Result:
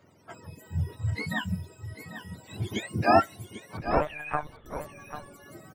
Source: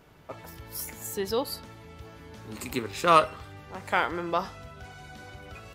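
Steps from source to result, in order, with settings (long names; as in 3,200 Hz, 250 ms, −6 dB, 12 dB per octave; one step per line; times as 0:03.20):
frequency axis turned over on the octave scale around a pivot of 920 Hz
reverb reduction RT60 0.85 s
0:03.77–0:04.66: one-pitch LPC vocoder at 8 kHz 150 Hz
single-tap delay 793 ms −10.5 dB
one half of a high-frequency compander decoder only
level +1 dB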